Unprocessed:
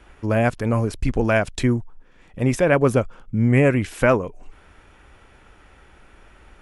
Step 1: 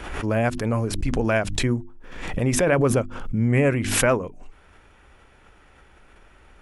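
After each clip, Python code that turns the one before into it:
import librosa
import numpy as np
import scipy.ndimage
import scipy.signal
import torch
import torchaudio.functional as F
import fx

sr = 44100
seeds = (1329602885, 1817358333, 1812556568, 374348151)

y = fx.hum_notches(x, sr, base_hz=50, count=7)
y = fx.pre_swell(y, sr, db_per_s=49.0)
y = F.gain(torch.from_numpy(y), -3.0).numpy()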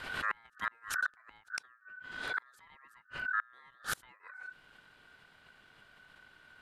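y = x * np.sin(2.0 * np.pi * 1500.0 * np.arange(len(x)) / sr)
y = fx.gate_flip(y, sr, shuts_db=-14.0, range_db=-32)
y = F.gain(torch.from_numpy(y), -5.5).numpy()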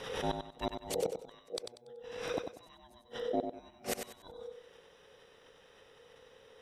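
y = fx.band_invert(x, sr, width_hz=2000)
y = fx.echo_feedback(y, sr, ms=95, feedback_pct=29, wet_db=-7)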